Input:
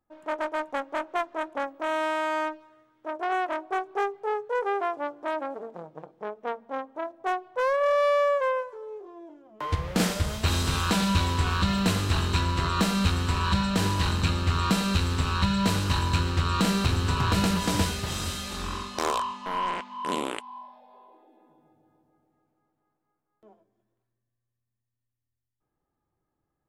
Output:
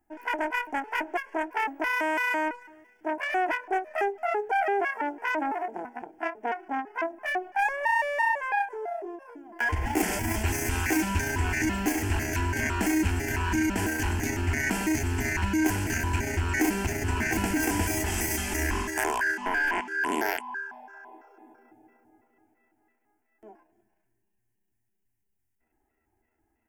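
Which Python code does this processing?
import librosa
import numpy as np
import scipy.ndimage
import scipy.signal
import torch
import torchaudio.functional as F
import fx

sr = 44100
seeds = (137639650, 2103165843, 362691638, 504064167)

p1 = fx.pitch_trill(x, sr, semitones=8.0, every_ms=167)
p2 = fx.over_compress(p1, sr, threshold_db=-33.0, ratio=-1.0)
p3 = p1 + F.gain(torch.from_numpy(p2), 0.0).numpy()
p4 = fx.fixed_phaser(p3, sr, hz=790.0, stages=8)
y = fx.end_taper(p4, sr, db_per_s=230.0)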